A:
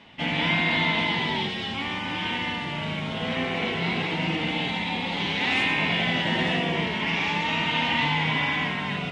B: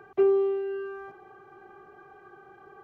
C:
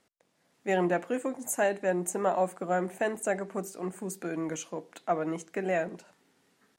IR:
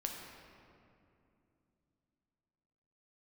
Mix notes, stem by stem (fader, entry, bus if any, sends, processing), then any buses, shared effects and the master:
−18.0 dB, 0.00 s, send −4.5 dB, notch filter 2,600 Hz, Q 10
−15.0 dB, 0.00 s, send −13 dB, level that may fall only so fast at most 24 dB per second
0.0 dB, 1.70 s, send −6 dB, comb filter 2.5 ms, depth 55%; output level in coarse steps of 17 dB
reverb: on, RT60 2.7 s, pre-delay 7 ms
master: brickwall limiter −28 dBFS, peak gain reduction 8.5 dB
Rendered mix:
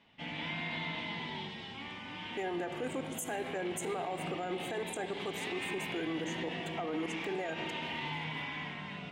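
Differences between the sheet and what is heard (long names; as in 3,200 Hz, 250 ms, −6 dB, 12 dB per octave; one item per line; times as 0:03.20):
stem A: missing notch filter 2,600 Hz, Q 10
stem B: muted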